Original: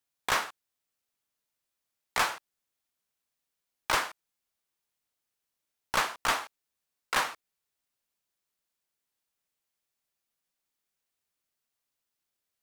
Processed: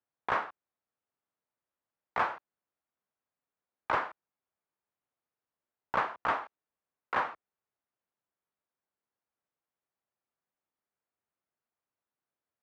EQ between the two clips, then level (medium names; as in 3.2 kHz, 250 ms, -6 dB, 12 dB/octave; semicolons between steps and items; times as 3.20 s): high-pass 63 Hz; low-pass 1.3 kHz 12 dB/octave; bass shelf 440 Hz -4 dB; +2.0 dB